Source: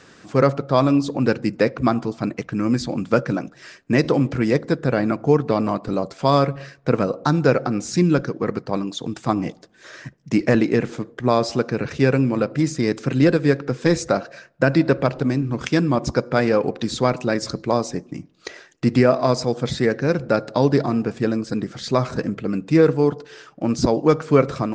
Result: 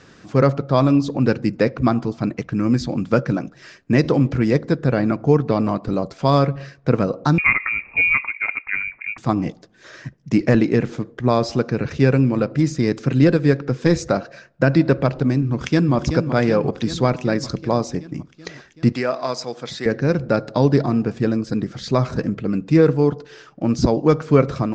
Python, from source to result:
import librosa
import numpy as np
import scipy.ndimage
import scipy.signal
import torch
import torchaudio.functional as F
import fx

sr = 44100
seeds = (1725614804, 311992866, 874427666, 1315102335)

y = fx.freq_invert(x, sr, carrier_hz=2600, at=(7.38, 9.18))
y = fx.echo_throw(y, sr, start_s=15.5, length_s=0.44, ms=380, feedback_pct=70, wet_db=-8.0)
y = fx.highpass(y, sr, hz=960.0, slope=6, at=(18.92, 19.86))
y = scipy.signal.sosfilt(scipy.signal.butter(4, 7400.0, 'lowpass', fs=sr, output='sos'), y)
y = fx.low_shelf(y, sr, hz=190.0, db=7.5)
y = y * librosa.db_to_amplitude(-1.0)